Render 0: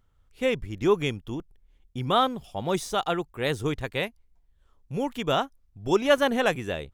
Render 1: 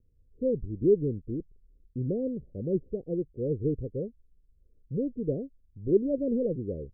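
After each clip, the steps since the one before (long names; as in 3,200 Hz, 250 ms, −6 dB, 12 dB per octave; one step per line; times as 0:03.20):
Butterworth low-pass 520 Hz 72 dB per octave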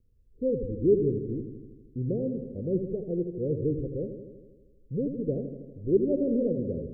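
delay with a low-pass on its return 80 ms, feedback 67%, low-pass 600 Hz, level −7 dB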